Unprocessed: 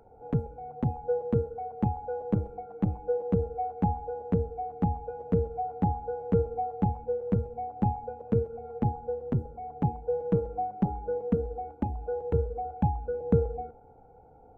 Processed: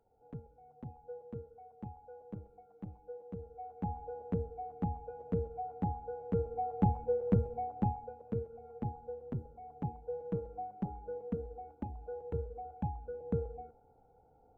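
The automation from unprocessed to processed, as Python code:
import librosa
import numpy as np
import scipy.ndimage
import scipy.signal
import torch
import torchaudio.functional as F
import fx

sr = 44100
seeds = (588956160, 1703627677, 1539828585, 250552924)

y = fx.gain(x, sr, db=fx.line((3.39, -18.0), (4.03, -8.0), (6.36, -8.0), (6.86, -1.5), (7.55, -1.5), (8.25, -10.5)))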